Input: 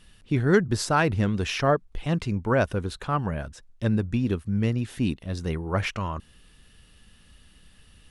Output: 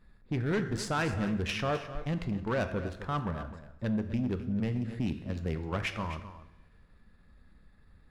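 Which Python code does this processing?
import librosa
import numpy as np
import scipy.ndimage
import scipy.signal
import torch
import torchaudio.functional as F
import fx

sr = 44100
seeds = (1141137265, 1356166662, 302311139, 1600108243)

p1 = fx.wiener(x, sr, points=15)
p2 = fx.peak_eq(p1, sr, hz=2400.0, db=4.0, octaves=1.6)
p3 = fx.level_steps(p2, sr, step_db=14)
p4 = p2 + (p3 * 10.0 ** (0.0 / 20.0))
p5 = fx.rev_double_slope(p4, sr, seeds[0], early_s=0.74, late_s=2.1, knee_db=-19, drr_db=9.5)
p6 = 10.0 ** (-15.0 / 20.0) * np.tanh(p5 / 10.0 ** (-15.0 / 20.0))
p7 = p6 + fx.echo_single(p6, sr, ms=258, db=-13.0, dry=0)
p8 = fx.band_squash(p7, sr, depth_pct=40, at=(4.6, 5.83))
y = p8 * 10.0 ** (-9.0 / 20.0)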